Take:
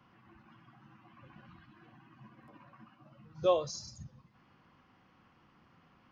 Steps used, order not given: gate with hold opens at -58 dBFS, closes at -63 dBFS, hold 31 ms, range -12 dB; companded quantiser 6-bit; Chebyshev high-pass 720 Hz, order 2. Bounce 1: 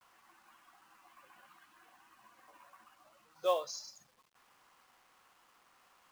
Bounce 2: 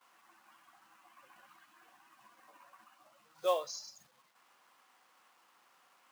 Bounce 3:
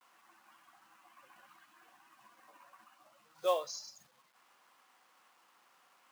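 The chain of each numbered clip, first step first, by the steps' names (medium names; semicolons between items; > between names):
gate with hold > Chebyshev high-pass > companded quantiser; companded quantiser > gate with hold > Chebyshev high-pass; gate with hold > companded quantiser > Chebyshev high-pass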